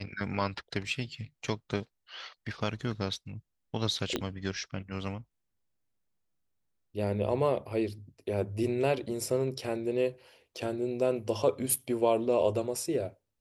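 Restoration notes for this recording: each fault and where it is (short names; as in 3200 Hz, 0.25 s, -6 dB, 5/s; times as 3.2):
4.16 pop -15 dBFS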